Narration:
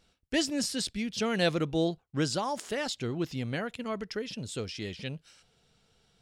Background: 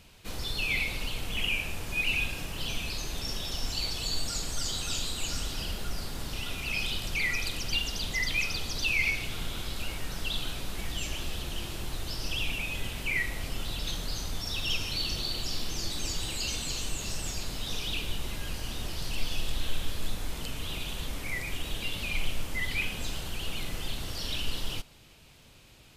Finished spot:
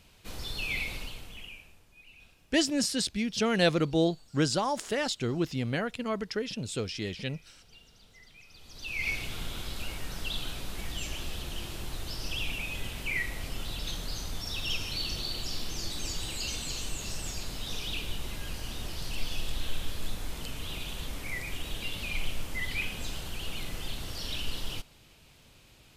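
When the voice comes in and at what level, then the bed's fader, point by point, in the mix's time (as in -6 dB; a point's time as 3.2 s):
2.20 s, +2.5 dB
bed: 0.95 s -3.5 dB
1.92 s -26.5 dB
8.39 s -26.5 dB
9.12 s -2 dB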